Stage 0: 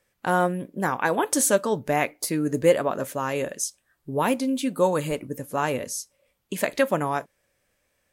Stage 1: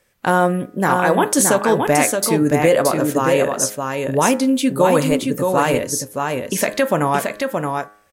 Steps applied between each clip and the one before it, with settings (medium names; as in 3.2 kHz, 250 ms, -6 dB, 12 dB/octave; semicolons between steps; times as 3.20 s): de-hum 103.8 Hz, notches 19; peak limiter -14 dBFS, peak gain reduction 7.5 dB; on a send: delay 623 ms -4.5 dB; on the sum: trim +8.5 dB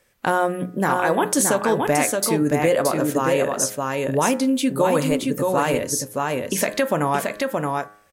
hum notches 60/120/180 Hz; compression 1.5:1, threshold -22 dBFS, peak gain reduction 4.5 dB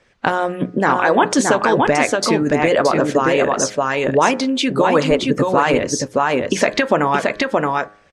Bessel low-pass 4.4 kHz, order 4; harmonic-percussive split harmonic -11 dB; in parallel at +1.5 dB: peak limiter -19 dBFS, peak gain reduction 10.5 dB; on the sum: trim +4.5 dB